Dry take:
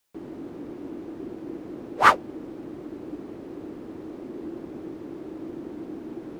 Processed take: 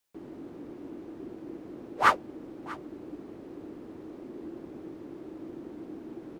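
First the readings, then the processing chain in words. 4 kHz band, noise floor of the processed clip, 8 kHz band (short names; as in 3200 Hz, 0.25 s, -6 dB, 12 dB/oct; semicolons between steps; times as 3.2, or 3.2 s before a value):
-5.5 dB, -47 dBFS, -5.5 dB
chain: echo 0.64 s -20 dB; gain -5.5 dB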